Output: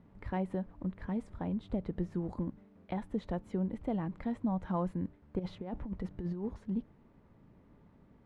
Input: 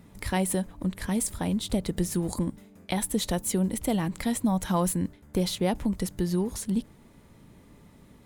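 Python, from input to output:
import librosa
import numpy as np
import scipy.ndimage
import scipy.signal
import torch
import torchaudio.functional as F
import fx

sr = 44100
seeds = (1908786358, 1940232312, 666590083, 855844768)

y = fx.over_compress(x, sr, threshold_db=-28.0, ratio=-0.5, at=(5.39, 6.54))
y = fx.quant_dither(y, sr, seeds[0], bits=10, dither='triangular')
y = scipy.signal.sosfilt(scipy.signal.butter(2, 1400.0, 'lowpass', fs=sr, output='sos'), y)
y = y * librosa.db_to_amplitude(-7.5)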